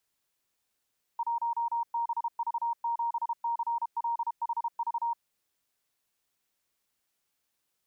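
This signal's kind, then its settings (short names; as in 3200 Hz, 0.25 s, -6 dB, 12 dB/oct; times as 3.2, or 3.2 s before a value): Morse "1BV7CLHV" 32 wpm 935 Hz -27 dBFS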